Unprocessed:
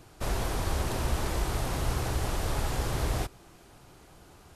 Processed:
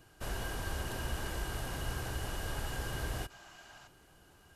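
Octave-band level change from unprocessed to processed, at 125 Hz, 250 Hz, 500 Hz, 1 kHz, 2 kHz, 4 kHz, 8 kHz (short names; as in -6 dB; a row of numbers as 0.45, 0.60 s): -8.5, -8.5, -8.5, -8.0, -2.0, -4.5, -6.5 dB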